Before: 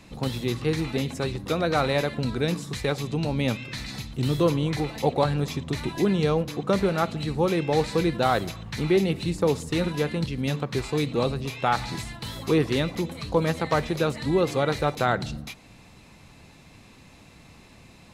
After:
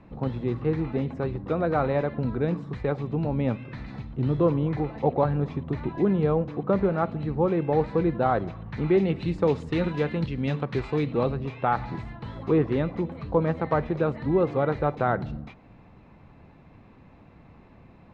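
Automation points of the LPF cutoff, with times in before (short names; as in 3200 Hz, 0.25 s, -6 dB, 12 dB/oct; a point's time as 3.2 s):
8.58 s 1300 Hz
9.28 s 2500 Hz
10.7 s 2500 Hz
11.83 s 1400 Hz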